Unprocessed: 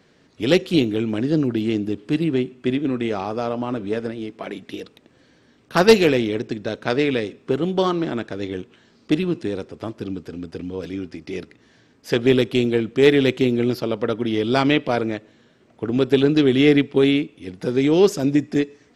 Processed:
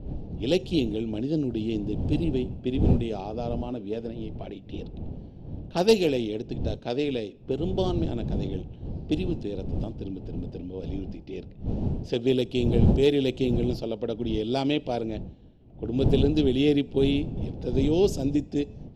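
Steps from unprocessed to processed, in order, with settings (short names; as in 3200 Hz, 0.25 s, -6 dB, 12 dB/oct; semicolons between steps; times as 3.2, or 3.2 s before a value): wind noise 170 Hz -24 dBFS; low-pass opened by the level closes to 2500 Hz, open at -12.5 dBFS; band shelf 1500 Hz -13 dB 1.3 oct; gain -7 dB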